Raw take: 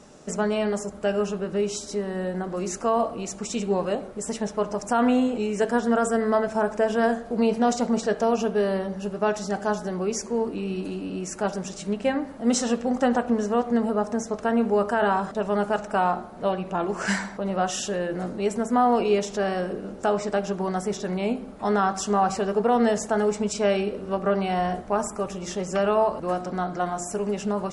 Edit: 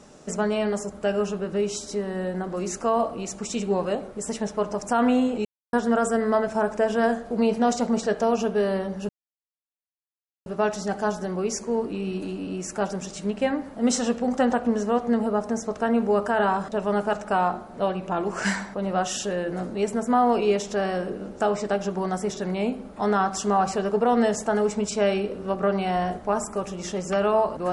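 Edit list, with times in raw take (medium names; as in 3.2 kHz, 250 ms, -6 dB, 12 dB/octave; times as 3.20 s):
5.45–5.73 s: mute
9.09 s: insert silence 1.37 s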